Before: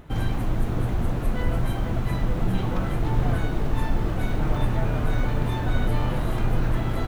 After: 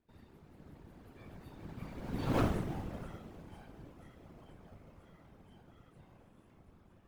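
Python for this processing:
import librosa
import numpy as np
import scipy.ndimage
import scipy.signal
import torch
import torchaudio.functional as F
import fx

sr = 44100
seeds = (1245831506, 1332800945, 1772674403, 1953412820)

p1 = fx.doppler_pass(x, sr, speed_mps=48, closest_m=3.6, pass_at_s=2.4)
p2 = scipy.signal.sosfilt(scipy.signal.butter(2, 69.0, 'highpass', fs=sr, output='sos'), p1)
p3 = fx.low_shelf(p2, sr, hz=120.0, db=-4.5)
p4 = fx.sample_hold(p3, sr, seeds[0], rate_hz=1900.0, jitter_pct=0)
p5 = p3 + F.gain(torch.from_numpy(p4), -11.0).numpy()
p6 = fx.notch_comb(p5, sr, f0_hz=200.0)
y = fx.whisperise(p6, sr, seeds[1])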